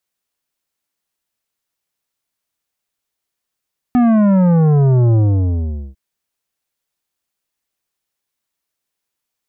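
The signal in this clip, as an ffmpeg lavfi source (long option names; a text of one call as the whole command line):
ffmpeg -f lavfi -i "aevalsrc='0.316*clip((2-t)/0.8,0,1)*tanh(3.55*sin(2*PI*250*2/log(65/250)*(exp(log(65/250)*t/2)-1)))/tanh(3.55)':duration=2:sample_rate=44100" out.wav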